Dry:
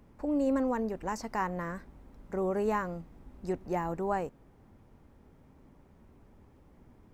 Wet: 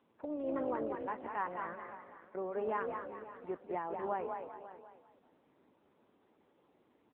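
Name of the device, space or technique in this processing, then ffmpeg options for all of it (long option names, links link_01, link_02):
satellite phone: -filter_complex "[0:a]asettb=1/sr,asplit=3[link_01][link_02][link_03];[link_01]atrim=end=1.754[link_04];[link_02]atrim=start=1.75:end=2.35,asetpts=PTS-STARTPTS,afade=type=in:duration=0.004:curve=qsin,afade=type=out:start_time=0.596:duration=0.004:curve=qsin,aderivative[link_05];[link_03]atrim=start=2.346[link_06];[link_04][link_05]acrossfade=duration=0.004:curve1=hsin:curve2=qsin[link_07];[link_07][link_06]acrossfade=duration=0.004:curve1=qsin:curve2=hsin,asplit=5[link_08][link_09][link_10][link_11][link_12];[link_09]adelay=198,afreqshift=37,volume=-5dB[link_13];[link_10]adelay=396,afreqshift=74,volume=-14.1dB[link_14];[link_11]adelay=594,afreqshift=111,volume=-23.2dB[link_15];[link_12]adelay=792,afreqshift=148,volume=-32.4dB[link_16];[link_08][link_13][link_14][link_15][link_16]amix=inputs=5:normalize=0,highpass=350,lowpass=3400,aecho=1:1:539:0.168,volume=-4dB" -ar 8000 -c:a libopencore_amrnb -b:a 6700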